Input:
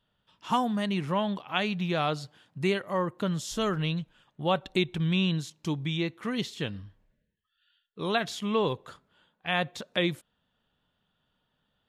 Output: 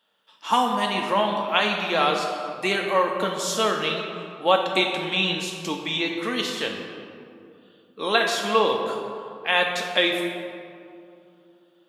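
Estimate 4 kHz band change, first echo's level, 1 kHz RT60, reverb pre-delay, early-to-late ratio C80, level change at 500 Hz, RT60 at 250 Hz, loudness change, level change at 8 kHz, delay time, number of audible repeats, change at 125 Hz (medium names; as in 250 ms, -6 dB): +9.5 dB, no echo, 2.4 s, 4 ms, 5.0 dB, +7.0 dB, 3.3 s, +6.5 dB, +10.0 dB, no echo, no echo, -7.0 dB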